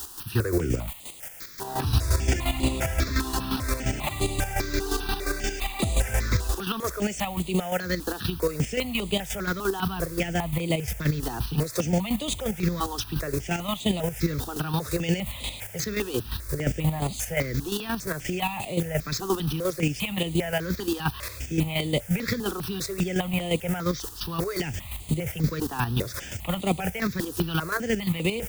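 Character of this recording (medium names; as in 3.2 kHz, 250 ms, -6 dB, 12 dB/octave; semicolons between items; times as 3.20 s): a quantiser's noise floor 6-bit, dither triangular; chopped level 5.7 Hz, depth 60%, duty 30%; notches that jump at a steady rate 5 Hz 590–5500 Hz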